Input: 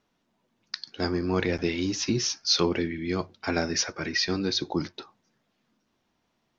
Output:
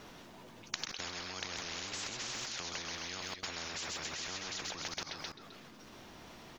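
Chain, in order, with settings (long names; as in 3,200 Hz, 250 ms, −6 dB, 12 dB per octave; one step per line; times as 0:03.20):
repeating echo 130 ms, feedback 43%, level −11 dB
output level in coarse steps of 20 dB
every bin compressed towards the loudest bin 10 to 1
level +6 dB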